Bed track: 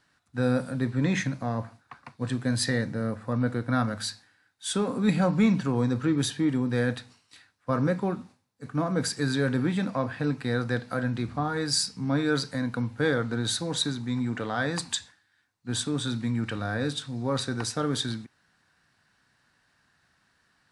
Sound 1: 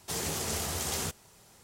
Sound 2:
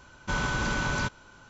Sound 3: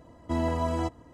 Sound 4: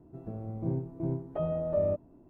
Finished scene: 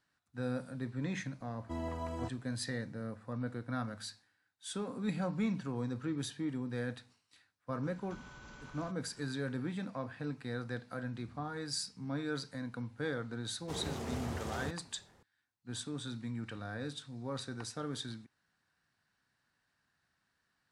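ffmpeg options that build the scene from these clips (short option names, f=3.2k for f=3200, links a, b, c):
-filter_complex "[0:a]volume=-12dB[a];[2:a]acompressor=threshold=-39dB:ratio=5:attack=2.3:release=456:knee=1:detection=peak[b];[1:a]lowpass=f=1k:p=1[c];[3:a]atrim=end=1.13,asetpts=PTS-STARTPTS,volume=-11.5dB,afade=t=in:d=0.004:c=hsin,afade=t=out:st=1.126:d=0.004:c=hsin,adelay=1400[d];[b]atrim=end=1.49,asetpts=PTS-STARTPTS,volume=-10dB,afade=t=in:d=0.004:c=hsin,afade=t=out:st=1.486:d=0.004:c=hsin,adelay=7830[e];[c]atrim=end=1.63,asetpts=PTS-STARTPTS,volume=-2.5dB,afade=t=in:d=0.004:c=hsin,afade=t=out:st=1.626:d=0.004:c=hsin,adelay=13600[f];[a][d][e][f]amix=inputs=4:normalize=0"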